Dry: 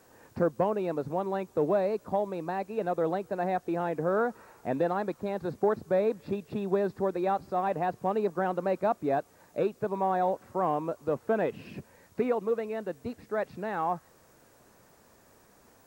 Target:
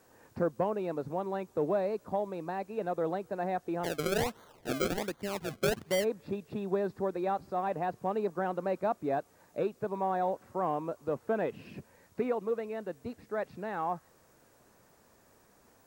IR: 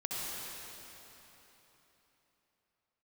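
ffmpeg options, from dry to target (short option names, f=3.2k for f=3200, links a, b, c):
-filter_complex "[0:a]asplit=3[a][b][c];[a]afade=t=out:st=3.83:d=0.02[d];[b]acrusher=samples=33:mix=1:aa=0.000001:lfo=1:lforange=33:lforate=1.3,afade=t=in:st=3.83:d=0.02,afade=t=out:st=6.03:d=0.02[e];[c]afade=t=in:st=6.03:d=0.02[f];[d][e][f]amix=inputs=3:normalize=0,volume=-3.5dB"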